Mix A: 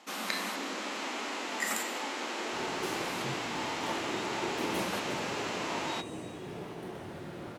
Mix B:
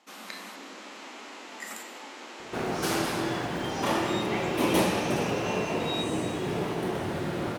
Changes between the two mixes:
speech -7.0 dB; background +11.5 dB

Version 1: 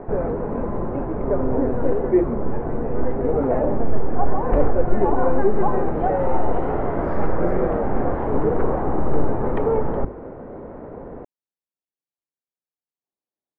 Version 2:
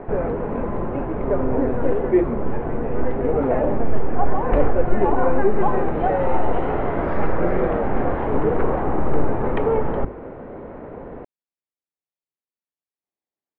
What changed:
speech: add distance through air 97 m; master: add peaking EQ 2.9 kHz +9 dB 1.5 oct

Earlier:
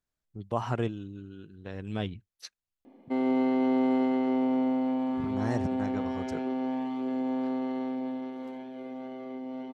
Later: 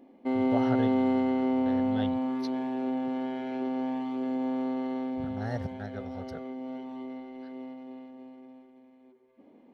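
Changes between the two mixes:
speech: add static phaser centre 1.6 kHz, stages 8; background: entry -2.85 s

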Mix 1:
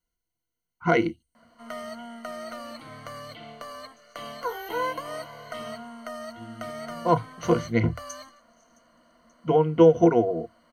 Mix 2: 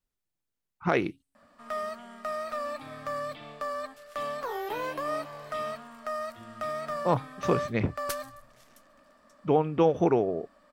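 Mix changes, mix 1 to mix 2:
second sound: remove band-pass filter 6.3 kHz, Q 9.3; master: remove rippled EQ curve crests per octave 1.9, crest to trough 17 dB

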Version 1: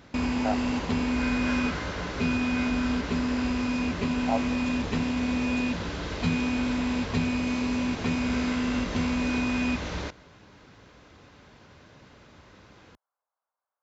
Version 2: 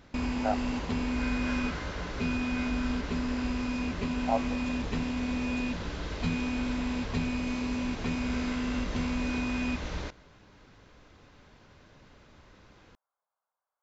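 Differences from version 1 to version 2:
background -4.5 dB; master: remove high-pass 65 Hz

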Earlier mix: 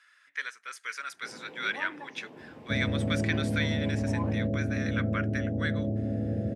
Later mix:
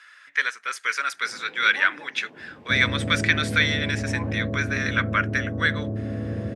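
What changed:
speech +12.0 dB; second sound: remove rippled Chebyshev low-pass 830 Hz, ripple 3 dB; master: add treble shelf 7.8 kHz -6 dB

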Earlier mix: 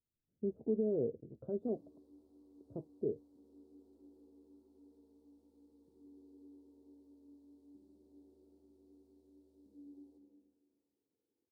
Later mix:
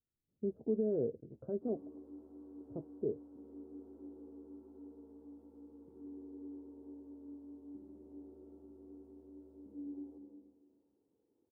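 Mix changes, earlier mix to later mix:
background +10.0 dB; master: add resonant high shelf 2.9 kHz -13 dB, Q 3

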